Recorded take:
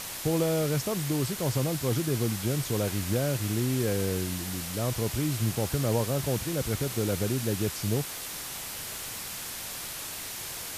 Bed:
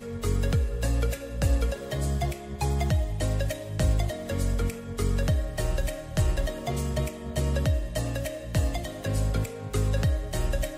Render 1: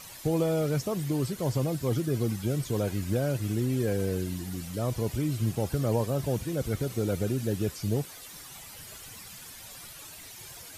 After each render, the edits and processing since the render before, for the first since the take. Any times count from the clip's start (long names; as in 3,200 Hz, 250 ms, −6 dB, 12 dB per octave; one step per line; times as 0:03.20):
broadband denoise 12 dB, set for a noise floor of −38 dBFS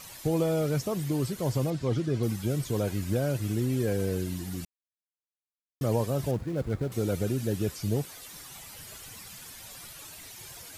0:01.70–0:02.23: low-pass filter 5,500 Hz
0:04.65–0:05.81: silence
0:06.31–0:06.92: running median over 15 samples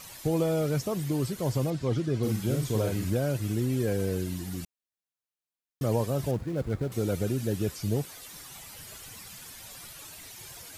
0:02.20–0:03.10: double-tracking delay 46 ms −4 dB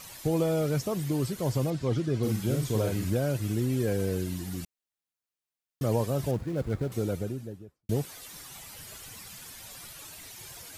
0:06.80–0:07.89: fade out and dull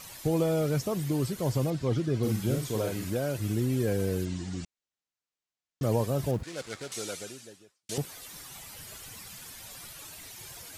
0:02.58–0:03.38: low-shelf EQ 180 Hz −8.5 dB
0:04.25–0:05.83: Butterworth low-pass 8,000 Hz 48 dB per octave
0:06.43–0:07.98: meter weighting curve ITU-R 468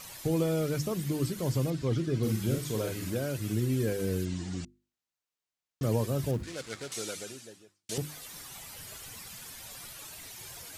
mains-hum notches 50/100/150/200/250/300/350 Hz
dynamic equaliser 750 Hz, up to −6 dB, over −44 dBFS, Q 1.4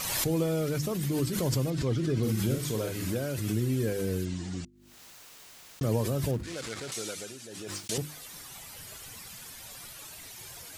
background raised ahead of every attack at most 30 dB per second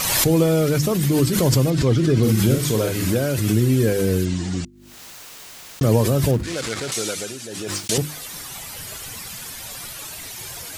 level +11 dB